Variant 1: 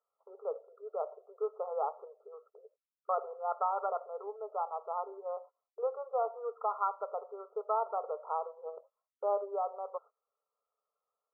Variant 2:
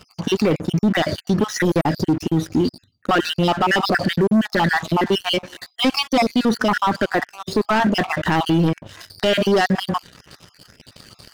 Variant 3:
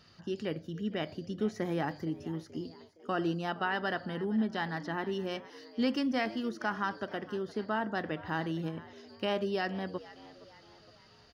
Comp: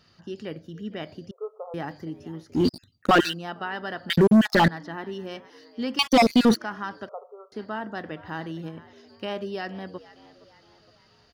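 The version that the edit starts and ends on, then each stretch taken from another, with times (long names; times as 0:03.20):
3
0:01.31–0:01.74: punch in from 1
0:02.59–0:03.30: punch in from 2, crossfade 0.16 s
0:04.10–0:04.68: punch in from 2
0:05.99–0:06.56: punch in from 2
0:07.09–0:07.52: punch in from 1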